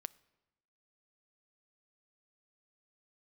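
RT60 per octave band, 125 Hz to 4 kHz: 1.1, 1.1, 1.0, 1.0, 0.90, 0.80 seconds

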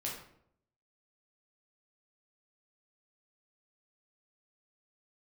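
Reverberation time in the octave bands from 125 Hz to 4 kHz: 0.85, 0.80, 0.75, 0.65, 0.55, 0.45 seconds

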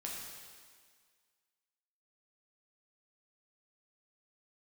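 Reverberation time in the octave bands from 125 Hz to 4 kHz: 1.5, 1.7, 1.8, 1.8, 1.8, 1.8 seconds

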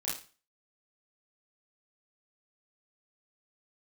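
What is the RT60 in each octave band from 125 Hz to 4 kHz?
0.40, 0.35, 0.35, 0.35, 0.35, 0.35 seconds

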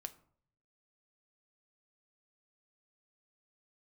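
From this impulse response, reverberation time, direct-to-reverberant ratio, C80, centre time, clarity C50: 0.55 s, 8.5 dB, 20.5 dB, 4 ms, 17.5 dB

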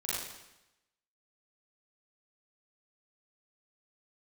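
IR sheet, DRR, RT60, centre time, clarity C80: −8.5 dB, 0.95 s, 94 ms, −0.5 dB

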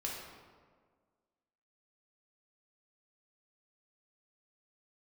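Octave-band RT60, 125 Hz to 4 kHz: 1.6, 1.8, 1.8, 1.6, 1.2, 0.95 seconds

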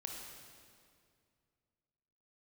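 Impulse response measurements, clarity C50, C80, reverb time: 1.5 dB, 3.0 dB, 2.2 s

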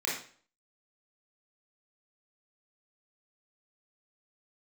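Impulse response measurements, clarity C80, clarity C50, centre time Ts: 8.5 dB, 3.0 dB, 41 ms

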